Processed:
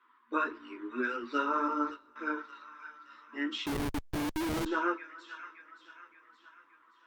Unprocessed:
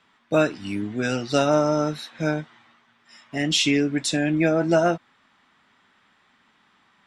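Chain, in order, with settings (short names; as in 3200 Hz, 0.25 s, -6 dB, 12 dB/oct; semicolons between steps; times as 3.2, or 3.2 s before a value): three-band isolator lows -18 dB, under 380 Hz, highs -23 dB, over 3100 Hz; thin delay 0.571 s, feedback 53%, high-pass 1600 Hz, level -9 dB; 1.68–2.16 gate -31 dBFS, range -25 dB; chorus voices 4, 1.2 Hz, delay 11 ms, depth 3 ms; EQ curve 370 Hz 0 dB, 720 Hz -29 dB, 1000 Hz +4 dB, 2300 Hz -11 dB, 5200 Hz -6 dB; FFT band-pass 230–8600 Hz; two-slope reverb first 0.43 s, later 4.3 s, from -18 dB, DRR 18 dB; 3.66–4.66 Schmitt trigger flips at -34 dBFS; gain +3 dB; Opus 48 kbps 48000 Hz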